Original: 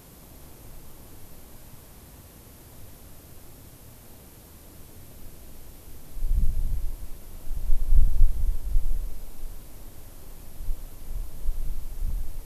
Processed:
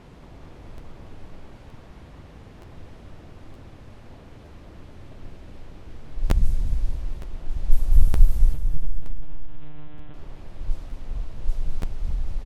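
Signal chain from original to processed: wow and flutter 110 cents; low-pass opened by the level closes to 2800 Hz, open at -10 dBFS; 8.54–10.14 monotone LPC vocoder at 8 kHz 150 Hz; feedback echo 0.223 s, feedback 50%, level -8 dB; crackling interface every 0.92 s, samples 512, repeat, from 0.77; gain +3.5 dB

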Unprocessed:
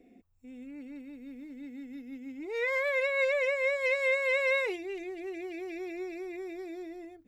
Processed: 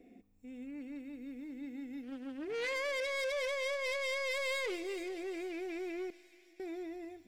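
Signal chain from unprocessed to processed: 3.68–4.32 tone controls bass -4 dB, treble -6 dB; 6.1–6.6 resonator 310 Hz, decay 0.79 s, mix 100%; soft clip -33.5 dBFS, distortion -7 dB; thin delay 0.427 s, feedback 49%, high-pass 4100 Hz, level -8 dB; reverb RT60 2.8 s, pre-delay 4 ms, DRR 15.5 dB; 2.03–2.74 Doppler distortion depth 0.31 ms

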